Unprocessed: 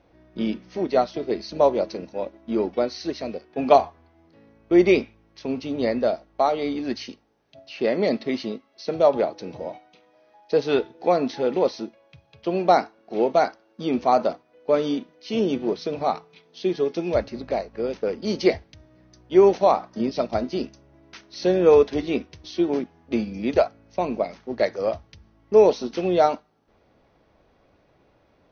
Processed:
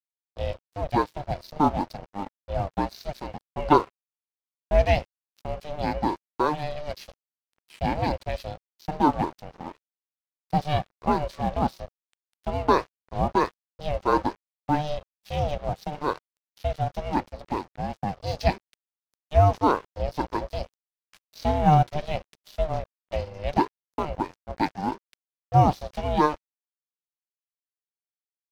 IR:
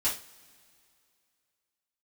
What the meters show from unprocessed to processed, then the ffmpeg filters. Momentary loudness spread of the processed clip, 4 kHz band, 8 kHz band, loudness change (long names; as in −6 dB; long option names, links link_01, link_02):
15 LU, −4.0 dB, can't be measured, −3.5 dB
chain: -af "aeval=exprs='sgn(val(0))*max(abs(val(0))-0.0106,0)':channel_layout=same,aeval=exprs='val(0)*sin(2*PI*300*n/s)':channel_layout=same"